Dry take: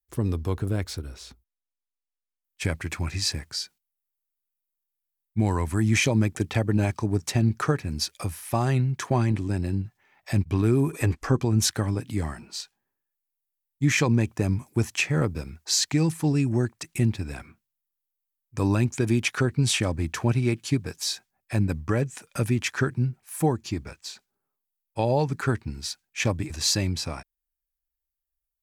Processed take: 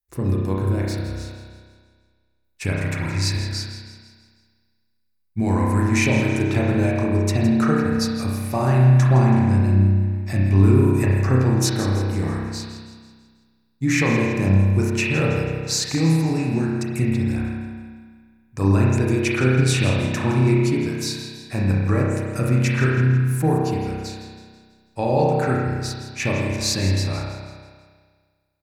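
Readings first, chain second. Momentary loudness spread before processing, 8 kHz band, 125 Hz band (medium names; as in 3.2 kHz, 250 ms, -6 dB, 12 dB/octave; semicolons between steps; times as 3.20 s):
11 LU, +0.5 dB, +7.0 dB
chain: band-stop 3.2 kHz, Q 6.9; feedback delay 164 ms, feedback 49%, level -13 dB; spring tank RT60 1.7 s, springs 31 ms, chirp 35 ms, DRR -3.5 dB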